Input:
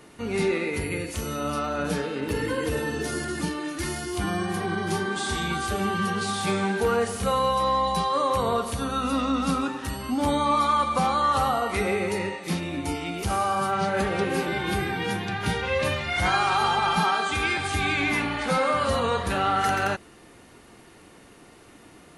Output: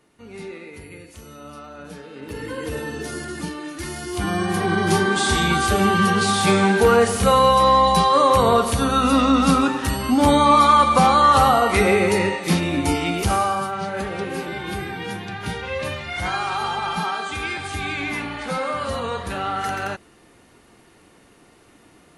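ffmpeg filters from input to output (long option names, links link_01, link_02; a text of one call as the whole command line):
ffmpeg -i in.wav -af "volume=8.5dB,afade=type=in:start_time=2.02:duration=0.72:silence=0.316228,afade=type=in:start_time=3.9:duration=1.02:silence=0.334965,afade=type=out:start_time=13.11:duration=0.6:silence=0.298538" out.wav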